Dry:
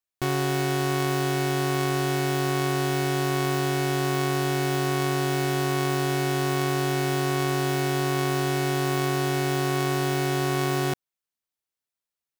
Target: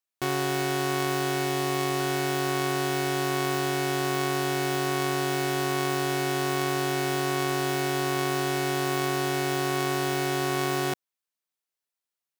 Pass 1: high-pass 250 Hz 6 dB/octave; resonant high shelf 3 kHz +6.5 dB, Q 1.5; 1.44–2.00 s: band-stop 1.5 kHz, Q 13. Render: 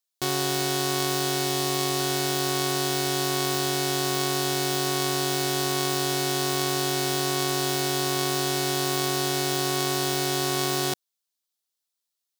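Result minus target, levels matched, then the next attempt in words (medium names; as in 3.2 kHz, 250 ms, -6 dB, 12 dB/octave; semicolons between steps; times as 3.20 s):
8 kHz band +5.0 dB
high-pass 250 Hz 6 dB/octave; 1.44–2.00 s: band-stop 1.5 kHz, Q 13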